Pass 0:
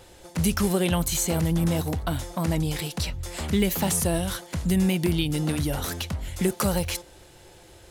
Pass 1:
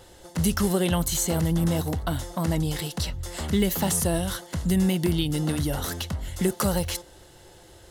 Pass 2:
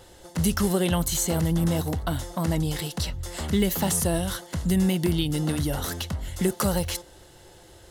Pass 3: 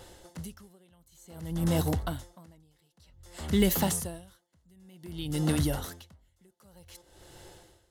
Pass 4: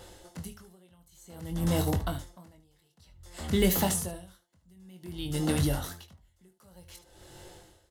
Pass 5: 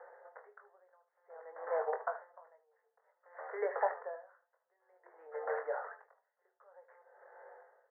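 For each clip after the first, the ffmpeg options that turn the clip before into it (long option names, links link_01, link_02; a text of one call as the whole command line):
ffmpeg -i in.wav -af "bandreject=frequency=2400:width=6.7" out.wav
ffmpeg -i in.wav -af anull out.wav
ffmpeg -i in.wav -af "aeval=exprs='val(0)*pow(10,-38*(0.5-0.5*cos(2*PI*0.54*n/s))/20)':channel_layout=same" out.wav
ffmpeg -i in.wav -af "aecho=1:1:22|75:0.447|0.2" out.wav
ffmpeg -i in.wav -af "asuperpass=centerf=910:order=20:qfactor=0.63" out.wav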